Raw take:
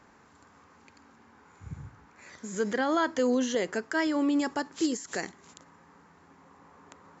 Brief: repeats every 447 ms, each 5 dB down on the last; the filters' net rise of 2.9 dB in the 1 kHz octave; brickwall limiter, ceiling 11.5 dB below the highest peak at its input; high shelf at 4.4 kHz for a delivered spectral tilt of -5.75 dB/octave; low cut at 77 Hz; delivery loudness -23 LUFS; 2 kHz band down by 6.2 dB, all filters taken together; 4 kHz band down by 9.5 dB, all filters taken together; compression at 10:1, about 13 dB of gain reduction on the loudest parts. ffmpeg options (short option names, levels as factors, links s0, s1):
-af "highpass=77,equalizer=f=1000:t=o:g=6.5,equalizer=f=2000:t=o:g=-9,equalizer=f=4000:t=o:g=-6,highshelf=f=4400:g=-7,acompressor=threshold=0.0178:ratio=10,alimiter=level_in=3.76:limit=0.0631:level=0:latency=1,volume=0.266,aecho=1:1:447|894|1341|1788|2235|2682|3129:0.562|0.315|0.176|0.0988|0.0553|0.031|0.0173,volume=11.9"